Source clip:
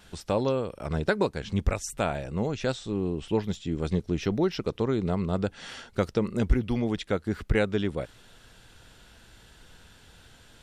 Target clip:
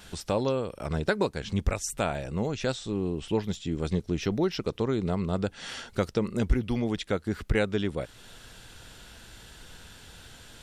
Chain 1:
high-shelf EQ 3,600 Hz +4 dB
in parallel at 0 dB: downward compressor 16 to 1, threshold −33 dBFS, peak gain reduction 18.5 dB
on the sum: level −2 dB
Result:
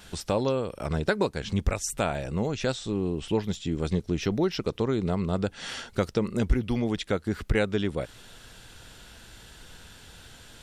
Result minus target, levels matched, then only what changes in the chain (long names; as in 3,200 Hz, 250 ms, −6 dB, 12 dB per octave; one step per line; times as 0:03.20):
downward compressor: peak gain reduction −7.5 dB
change: downward compressor 16 to 1, threshold −41 dBFS, peak gain reduction 26 dB